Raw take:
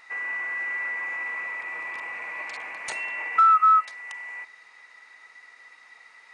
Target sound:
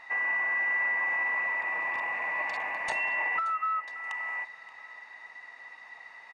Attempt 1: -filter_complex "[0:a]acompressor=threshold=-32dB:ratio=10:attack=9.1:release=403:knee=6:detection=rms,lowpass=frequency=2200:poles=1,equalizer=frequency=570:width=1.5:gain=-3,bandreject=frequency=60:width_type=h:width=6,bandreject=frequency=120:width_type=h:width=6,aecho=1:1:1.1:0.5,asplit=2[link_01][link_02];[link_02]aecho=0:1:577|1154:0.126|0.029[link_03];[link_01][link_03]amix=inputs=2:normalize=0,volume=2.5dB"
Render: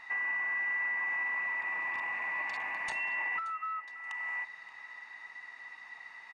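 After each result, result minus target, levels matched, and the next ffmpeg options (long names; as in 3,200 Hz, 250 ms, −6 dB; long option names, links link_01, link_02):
downward compressor: peak gain reduction +6.5 dB; 500 Hz band −6.0 dB
-filter_complex "[0:a]acompressor=threshold=-25dB:ratio=10:attack=9.1:release=403:knee=6:detection=rms,lowpass=frequency=2200:poles=1,equalizer=frequency=570:width=1.5:gain=-3,bandreject=frequency=60:width_type=h:width=6,bandreject=frequency=120:width_type=h:width=6,aecho=1:1:1.1:0.5,asplit=2[link_01][link_02];[link_02]aecho=0:1:577|1154:0.126|0.029[link_03];[link_01][link_03]amix=inputs=2:normalize=0,volume=2.5dB"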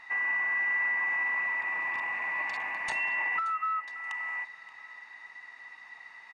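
500 Hz band −6.5 dB
-filter_complex "[0:a]acompressor=threshold=-25dB:ratio=10:attack=9.1:release=403:knee=6:detection=rms,lowpass=frequency=2200:poles=1,equalizer=frequency=570:width=1.5:gain=5.5,bandreject=frequency=60:width_type=h:width=6,bandreject=frequency=120:width_type=h:width=6,aecho=1:1:1.1:0.5,asplit=2[link_01][link_02];[link_02]aecho=0:1:577|1154:0.126|0.029[link_03];[link_01][link_03]amix=inputs=2:normalize=0,volume=2.5dB"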